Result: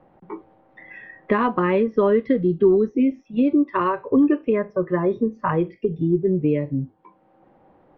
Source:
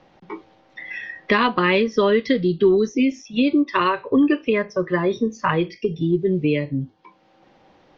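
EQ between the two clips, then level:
low-pass filter 1,200 Hz 12 dB per octave
0.0 dB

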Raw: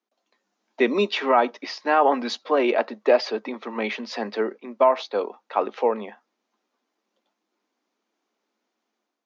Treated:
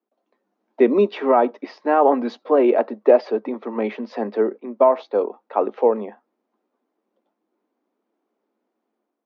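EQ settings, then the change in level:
high-pass filter 350 Hz 12 dB per octave
spectral tilt −6 dB per octave
0.0 dB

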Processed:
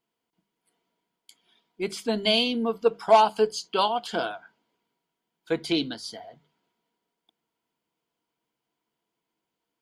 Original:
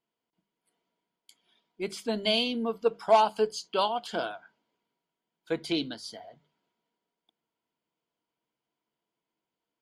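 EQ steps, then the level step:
notch filter 590 Hz, Q 12
+4.0 dB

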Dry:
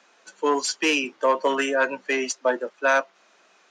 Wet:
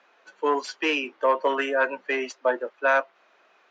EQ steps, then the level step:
high-frequency loss of the air 110 metres
bass and treble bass −11 dB, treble −8 dB
0.0 dB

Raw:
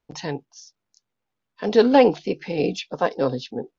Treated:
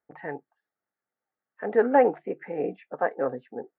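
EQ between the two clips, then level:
high-pass filter 650 Hz 6 dB per octave
Butterworth band-reject 1,000 Hz, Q 6.7
elliptic low-pass filter 1,900 Hz, stop band 70 dB
0.0 dB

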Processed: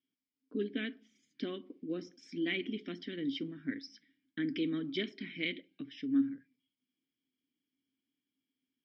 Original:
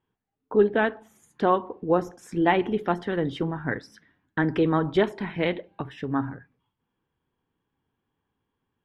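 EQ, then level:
formant filter i
low-pass with resonance 5,200 Hz, resonance Q 8.3
high-shelf EQ 3,700 Hz +10.5 dB
0.0 dB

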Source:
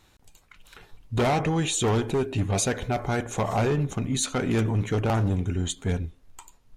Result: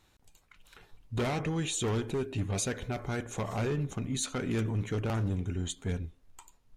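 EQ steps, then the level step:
dynamic equaliser 770 Hz, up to −6 dB, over −40 dBFS, Q 1.9
−6.5 dB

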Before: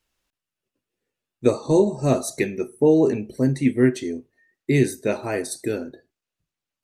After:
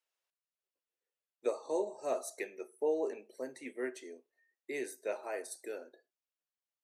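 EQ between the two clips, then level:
dynamic equaliser 3,900 Hz, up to −5 dB, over −45 dBFS, Q 1.3
four-pole ladder high-pass 410 Hz, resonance 25%
−7.0 dB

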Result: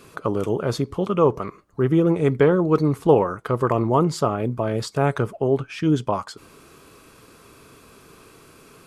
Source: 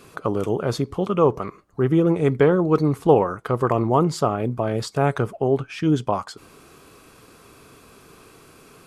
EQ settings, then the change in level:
notch filter 750 Hz, Q 12
0.0 dB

